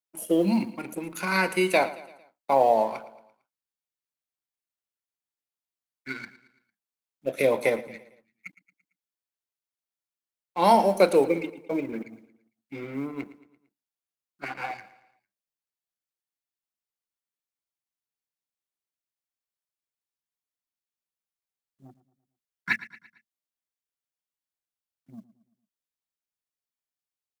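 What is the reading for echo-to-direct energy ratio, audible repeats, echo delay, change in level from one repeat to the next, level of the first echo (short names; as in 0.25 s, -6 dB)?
-16.0 dB, 3, 0.113 s, -6.5 dB, -17.0 dB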